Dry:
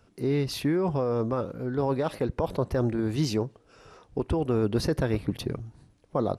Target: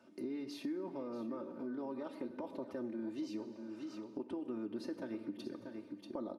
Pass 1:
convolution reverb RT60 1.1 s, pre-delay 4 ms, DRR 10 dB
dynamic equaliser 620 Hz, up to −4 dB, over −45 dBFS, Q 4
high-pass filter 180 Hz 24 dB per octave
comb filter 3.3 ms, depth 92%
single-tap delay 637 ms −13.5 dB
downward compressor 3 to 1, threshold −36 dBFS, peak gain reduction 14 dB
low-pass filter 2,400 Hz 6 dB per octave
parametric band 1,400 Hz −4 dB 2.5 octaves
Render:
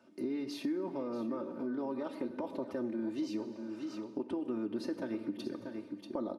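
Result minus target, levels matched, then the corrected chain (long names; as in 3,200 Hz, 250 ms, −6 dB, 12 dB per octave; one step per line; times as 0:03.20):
downward compressor: peak gain reduction −5 dB
convolution reverb RT60 1.1 s, pre-delay 4 ms, DRR 10 dB
dynamic equaliser 620 Hz, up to −4 dB, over −45 dBFS, Q 4
high-pass filter 180 Hz 24 dB per octave
comb filter 3.3 ms, depth 92%
single-tap delay 637 ms −13.5 dB
downward compressor 3 to 1, threshold −43.5 dBFS, peak gain reduction 19 dB
low-pass filter 2,400 Hz 6 dB per octave
parametric band 1,400 Hz −4 dB 2.5 octaves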